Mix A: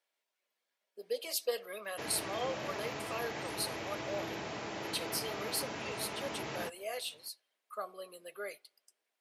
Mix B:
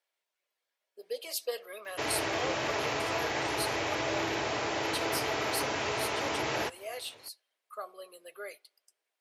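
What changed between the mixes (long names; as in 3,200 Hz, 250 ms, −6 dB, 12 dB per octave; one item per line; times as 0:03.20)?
background +9.5 dB
master: add parametric band 190 Hz −12.5 dB 0.7 octaves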